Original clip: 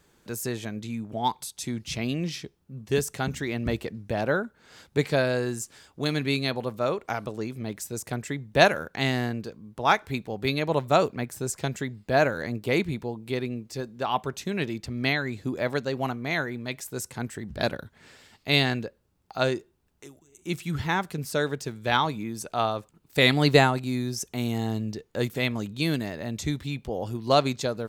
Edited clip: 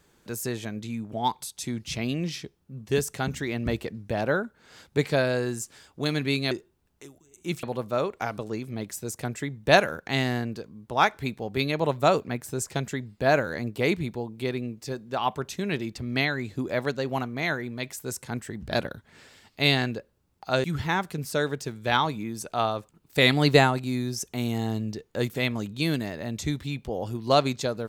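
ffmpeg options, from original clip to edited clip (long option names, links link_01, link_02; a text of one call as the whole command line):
ffmpeg -i in.wav -filter_complex "[0:a]asplit=4[link_01][link_02][link_03][link_04];[link_01]atrim=end=6.512[link_05];[link_02]atrim=start=19.518:end=20.642[link_06];[link_03]atrim=start=6.508:end=19.522[link_07];[link_04]atrim=start=20.638[link_08];[link_05][link_06]acrossfade=duration=0.004:curve1=hsin:curve2=hsin[link_09];[link_09][link_07]acrossfade=duration=0.004:curve1=hsin:curve2=hsin[link_10];[link_10][link_08]acrossfade=duration=0.004:curve1=hsin:curve2=hsin" out.wav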